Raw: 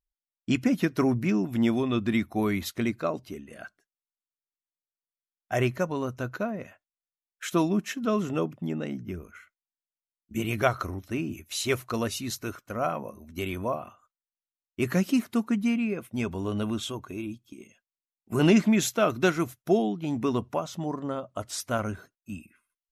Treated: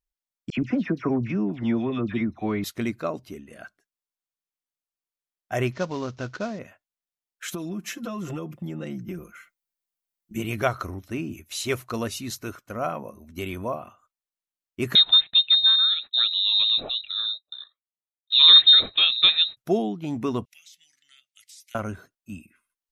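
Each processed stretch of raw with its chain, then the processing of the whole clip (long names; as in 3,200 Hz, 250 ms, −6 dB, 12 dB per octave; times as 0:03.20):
0:00.50–0:02.64: high-frequency loss of the air 230 metres + all-pass dispersion lows, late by 74 ms, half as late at 1,600 Hz
0:05.72–0:06.59: variable-slope delta modulation 32 kbit/s + high-shelf EQ 4,400 Hz +6 dB
0:07.48–0:10.36: high-shelf EQ 11,000 Hz +8 dB + comb filter 5.8 ms, depth 98% + downward compressor 12 to 1, threshold −28 dBFS
0:14.95–0:19.57: downward expander −47 dBFS + low-shelf EQ 330 Hz +11 dB + voice inversion scrambler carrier 3,900 Hz
0:20.45–0:21.75: elliptic high-pass filter 2,100 Hz, stop band 50 dB + downward compressor 5 to 1, threshold −46 dBFS
whole clip: no processing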